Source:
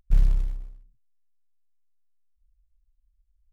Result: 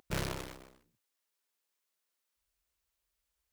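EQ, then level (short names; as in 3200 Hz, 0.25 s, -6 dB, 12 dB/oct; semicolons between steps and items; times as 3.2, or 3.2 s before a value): HPF 320 Hz 12 dB/oct; notch 760 Hz, Q 12; +11.5 dB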